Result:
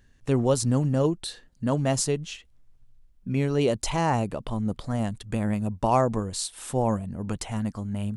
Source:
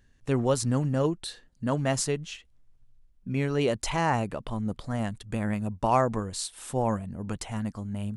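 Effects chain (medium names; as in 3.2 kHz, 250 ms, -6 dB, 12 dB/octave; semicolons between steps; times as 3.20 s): dynamic bell 1.7 kHz, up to -6 dB, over -44 dBFS, Q 0.96; trim +3 dB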